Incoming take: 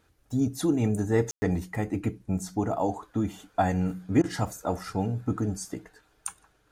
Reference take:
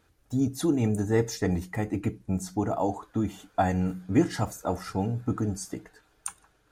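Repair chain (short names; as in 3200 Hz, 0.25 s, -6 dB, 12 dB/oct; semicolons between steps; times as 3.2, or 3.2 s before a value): room tone fill 1.31–1.42; interpolate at 4.22, 17 ms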